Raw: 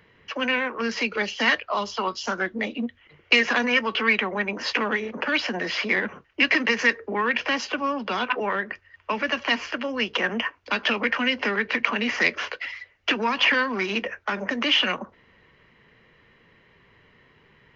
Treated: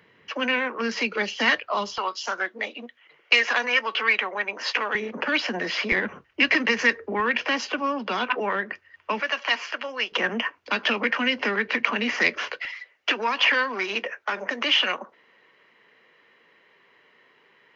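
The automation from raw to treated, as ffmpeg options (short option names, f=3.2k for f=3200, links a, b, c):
-af "asetnsamples=n=441:p=0,asendcmd='1.98 highpass f 530;4.95 highpass f 140;5.92 highpass f 55;7.2 highpass f 150;9.2 highpass f 590;10.12 highpass f 150;12.65 highpass f 380',highpass=140"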